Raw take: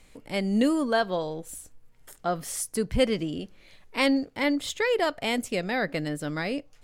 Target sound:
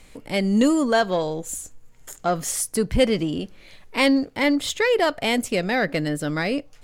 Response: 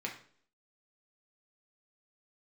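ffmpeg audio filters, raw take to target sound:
-filter_complex "[0:a]asplit=2[link_01][link_02];[link_02]asoftclip=type=tanh:threshold=-25dB,volume=-4.5dB[link_03];[link_01][link_03]amix=inputs=2:normalize=0,asettb=1/sr,asplit=3[link_04][link_05][link_06];[link_04]atrim=end=0.574[link_07];[link_05]atrim=start=0.57:end=2.51,asetpts=PTS-STARTPTS,afade=type=in:duration=0.004:curve=qsin,afade=type=out:start_time=1.936:duration=0.004:curve=qsin,equalizer=frequency=6900:width=5.3:gain=12[link_08];[link_06]atrim=start=2.506[link_09];[link_07][link_08]acrossfade=duration=0.004:curve1=hsin:curve2=qsin[link_10];[link_10][link_09]acrossfade=duration=0.004:curve1=qsin:curve2=hsin,volume=2.5dB"

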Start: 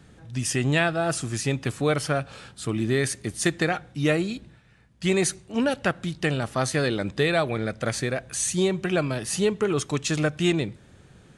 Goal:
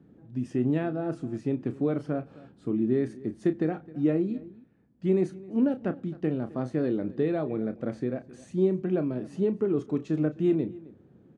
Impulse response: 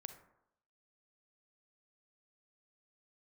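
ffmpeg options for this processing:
-filter_complex "[0:a]bandpass=frequency=280:width_type=q:width=1.7:csg=0,asplit=2[link_01][link_02];[link_02]adelay=32,volume=-11dB[link_03];[link_01][link_03]amix=inputs=2:normalize=0,asplit=2[link_04][link_05];[link_05]adelay=262.4,volume=-20dB,highshelf=frequency=4000:gain=-5.9[link_06];[link_04][link_06]amix=inputs=2:normalize=0,volume=2dB"

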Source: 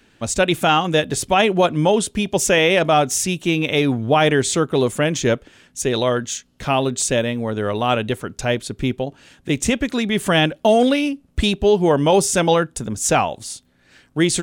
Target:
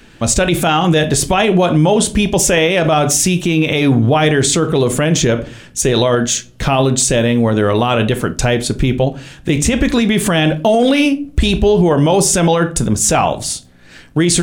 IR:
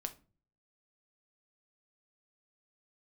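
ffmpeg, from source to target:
-filter_complex "[0:a]lowshelf=frequency=110:gain=6.5,asplit=2[link_01][link_02];[1:a]atrim=start_sample=2205[link_03];[link_02][link_03]afir=irnorm=-1:irlink=0,volume=8dB[link_04];[link_01][link_04]amix=inputs=2:normalize=0,alimiter=level_in=4dB:limit=-1dB:release=50:level=0:latency=1,volume=-3dB"

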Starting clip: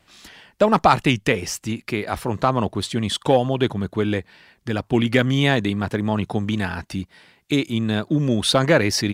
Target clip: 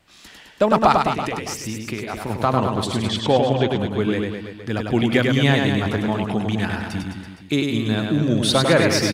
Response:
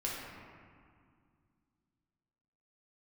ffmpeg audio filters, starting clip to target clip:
-filter_complex "[0:a]asettb=1/sr,asplit=3[link_01][link_02][link_03];[link_01]atrim=end=0.924[link_04];[link_02]atrim=start=0.92:end=2.3,asetpts=PTS-STARTPTS,afade=type=in:duration=0.004:curve=qsin,afade=type=out:start_time=1.376:duration=0.004:curve=qsin,acompressor=threshold=-24dB:ratio=6[link_05];[link_03]atrim=start=2.296[link_06];[link_04][link_05]acrossfade=duration=0.004:curve1=hsin:curve2=qsin[link_07];[link_07][link_06]acrossfade=duration=0.004:curve1=qsin:curve2=hsin,asettb=1/sr,asplit=3[link_08][link_09][link_10];[link_08]atrim=end=3.084[link_11];[link_09]atrim=start=3.08:end=3.7,asetpts=PTS-STARTPTS,afade=type=in:duration=0.004:curve=qsin,afade=type=out:start_time=0.616:duration=0.004:curve=qsin,lowpass=frequency=6500:width=0.5412,lowpass=frequency=6500:width=1.3066[link_12];[link_10]atrim=start=3.696[link_13];[link_11][link_12]acrossfade=duration=0.004:curve1=hsin:curve2=qsin[link_14];[link_14][link_13]acrossfade=duration=0.004:curve1=qsin:curve2=hsin,aecho=1:1:100|210|331|464.1|610.5:0.631|0.398|0.251|0.158|0.1,volume=-1dB"

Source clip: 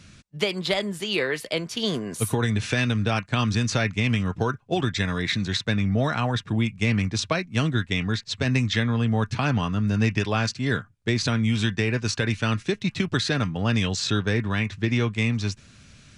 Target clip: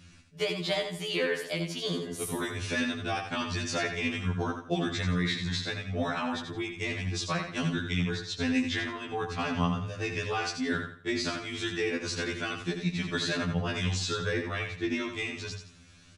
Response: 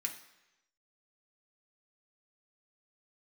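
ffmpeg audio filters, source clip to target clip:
-af "bandreject=frequency=50:width_type=h:width=6,bandreject=frequency=100:width_type=h:width=6,aecho=1:1:85|170|255|340:0.447|0.138|0.0429|0.0133,afftfilt=real='re*2*eq(mod(b,4),0)':imag='im*2*eq(mod(b,4),0)':win_size=2048:overlap=0.75,volume=-3.5dB"

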